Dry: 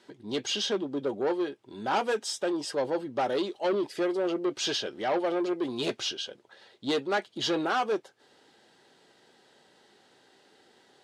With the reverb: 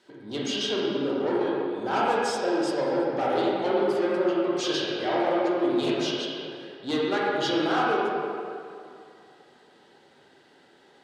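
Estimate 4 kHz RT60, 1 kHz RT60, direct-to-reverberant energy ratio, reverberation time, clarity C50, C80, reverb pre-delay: 1.6 s, 2.5 s, -5.5 dB, 2.5 s, -3.0 dB, -1.0 dB, 25 ms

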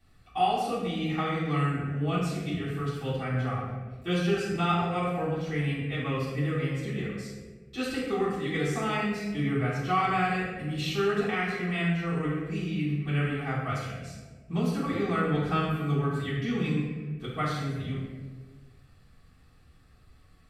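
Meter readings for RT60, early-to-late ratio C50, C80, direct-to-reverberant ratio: 1.5 s, 0.0 dB, 2.5 dB, -11.5 dB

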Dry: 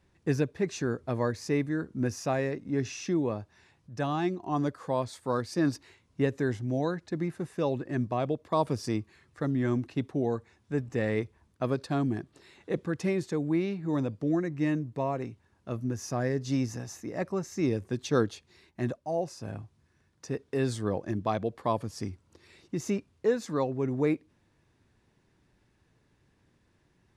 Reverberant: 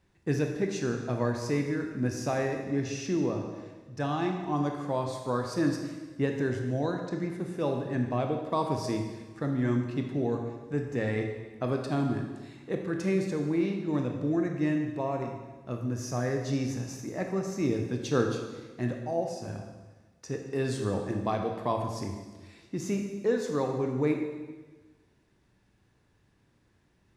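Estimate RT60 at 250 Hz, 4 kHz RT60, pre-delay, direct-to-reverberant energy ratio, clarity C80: 1.4 s, 1.2 s, 18 ms, 2.5 dB, 6.5 dB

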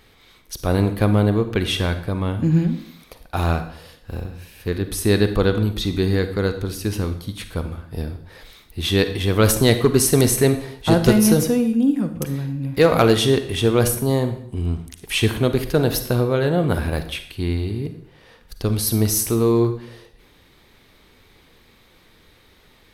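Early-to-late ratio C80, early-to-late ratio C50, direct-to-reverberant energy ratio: 13.5 dB, 10.5 dB, 9.0 dB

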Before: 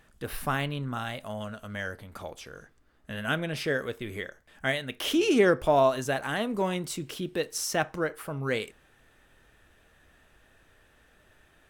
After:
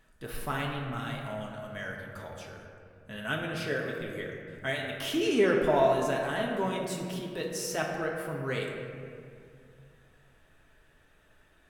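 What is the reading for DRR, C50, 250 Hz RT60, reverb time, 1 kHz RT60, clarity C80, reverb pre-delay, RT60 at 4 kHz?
-1.5 dB, 2.5 dB, 2.7 s, 2.3 s, 2.1 s, 4.0 dB, 3 ms, 1.2 s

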